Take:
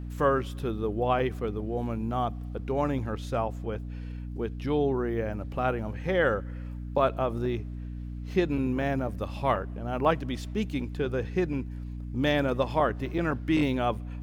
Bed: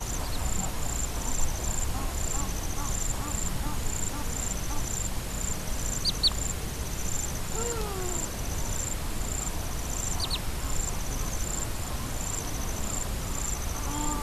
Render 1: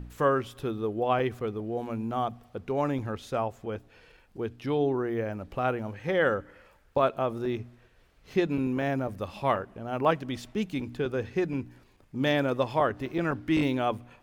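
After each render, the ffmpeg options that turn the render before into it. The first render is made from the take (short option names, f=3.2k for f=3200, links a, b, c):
-af "bandreject=f=60:t=h:w=4,bandreject=f=120:t=h:w=4,bandreject=f=180:t=h:w=4,bandreject=f=240:t=h:w=4,bandreject=f=300:t=h:w=4"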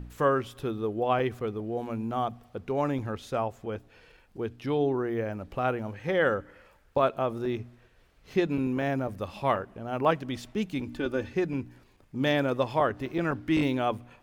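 -filter_complex "[0:a]asettb=1/sr,asplit=3[a][b][c];[a]atrim=end=10.884[d];[b]atrim=start=10.88:end=11.33,asetpts=PTS-STARTPTS,afade=t=in:d=0.004:c=qsin,afade=t=out:st=0.446:d=0.004:c=qsin,aecho=1:1:3.4:0.65,atrim=end_sample=19845[e];[c]atrim=start=11.326[f];[d][e]acrossfade=d=0.004:c1=hsin:c2=qsin[g];[g][f]acrossfade=d=0.004:c1=qsin:c2=hsin"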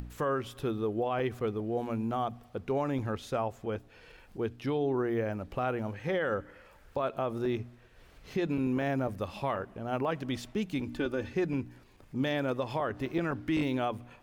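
-af "alimiter=limit=-21.5dB:level=0:latency=1:release=101,acompressor=mode=upward:threshold=-46dB:ratio=2.5"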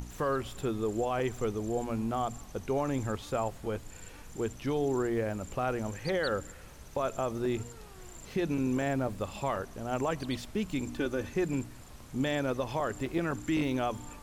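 -filter_complex "[1:a]volume=-18dB[a];[0:a][a]amix=inputs=2:normalize=0"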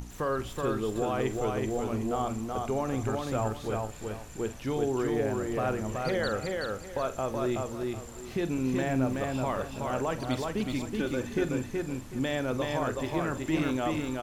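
-filter_complex "[0:a]asplit=2[a][b];[b]adelay=46,volume=-13dB[c];[a][c]amix=inputs=2:normalize=0,aecho=1:1:375|750|1125|1500:0.708|0.184|0.0479|0.0124"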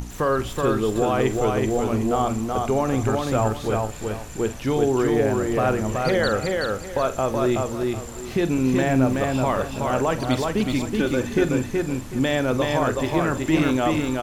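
-af "volume=8.5dB"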